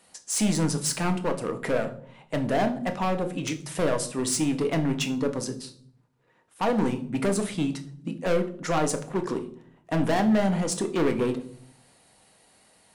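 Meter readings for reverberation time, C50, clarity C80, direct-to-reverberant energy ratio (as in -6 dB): 0.60 s, 14.0 dB, 17.5 dB, 6.0 dB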